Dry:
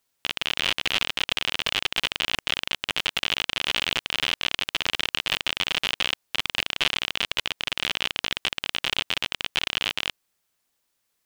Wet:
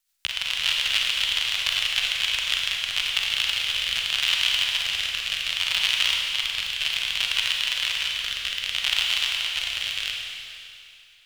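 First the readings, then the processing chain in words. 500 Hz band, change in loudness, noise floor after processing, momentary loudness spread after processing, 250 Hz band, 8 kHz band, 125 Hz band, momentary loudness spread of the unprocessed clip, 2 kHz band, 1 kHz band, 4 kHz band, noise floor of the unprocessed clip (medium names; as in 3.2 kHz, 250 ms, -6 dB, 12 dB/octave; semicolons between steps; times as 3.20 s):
-11.0 dB, +3.0 dB, -49 dBFS, 6 LU, under -15 dB, +5.0 dB, no reading, 3 LU, +1.5 dB, -5.0 dB, +3.5 dB, -76 dBFS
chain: rotary cabinet horn 7 Hz, later 0.65 Hz, at 2.79 s; amplifier tone stack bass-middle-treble 10-0-10; Schroeder reverb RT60 2.6 s, combs from 33 ms, DRR -1 dB; trim +4.5 dB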